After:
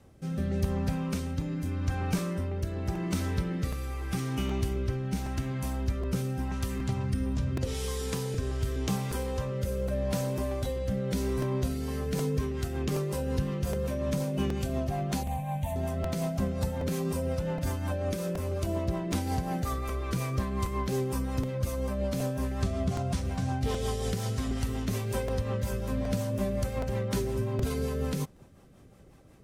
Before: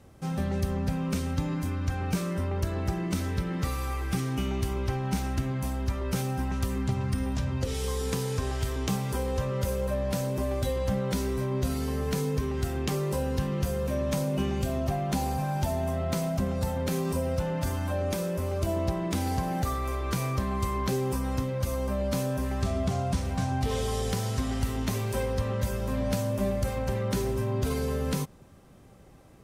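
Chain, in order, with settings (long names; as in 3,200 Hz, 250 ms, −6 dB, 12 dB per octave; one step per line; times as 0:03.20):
rotating-speaker cabinet horn 0.85 Hz, later 5.5 Hz, at 0:11.46
0:15.23–0:15.76: phaser with its sweep stopped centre 1,400 Hz, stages 6
regular buffer underruns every 0.77 s, samples 128, repeat, from 0:00.64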